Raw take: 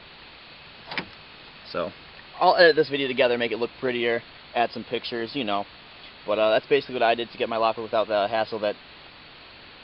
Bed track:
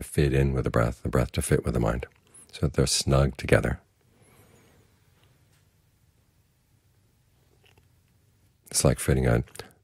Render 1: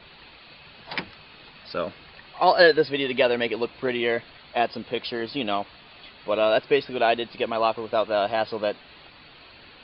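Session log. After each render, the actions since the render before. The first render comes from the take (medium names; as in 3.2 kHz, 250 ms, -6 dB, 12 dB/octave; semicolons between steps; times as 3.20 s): noise reduction 6 dB, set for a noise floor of -47 dBFS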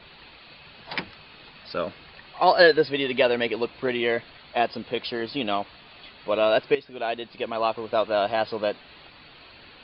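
6.75–7.97 s: fade in, from -13 dB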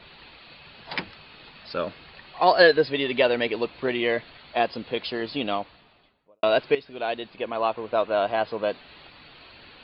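5.34–6.43 s: studio fade out; 7.30–8.69 s: tone controls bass -2 dB, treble -11 dB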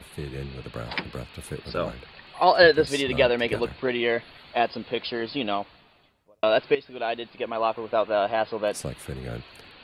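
add bed track -12 dB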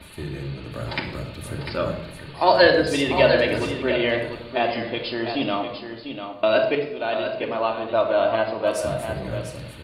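delay 697 ms -8.5 dB; simulated room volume 2200 m³, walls furnished, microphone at 2.6 m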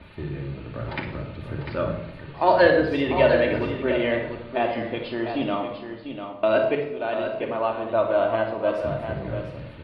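distance through air 370 m; on a send: flutter echo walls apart 9.4 m, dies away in 0.31 s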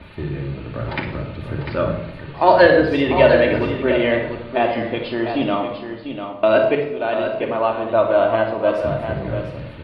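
trim +5.5 dB; peak limiter -1 dBFS, peak gain reduction 2.5 dB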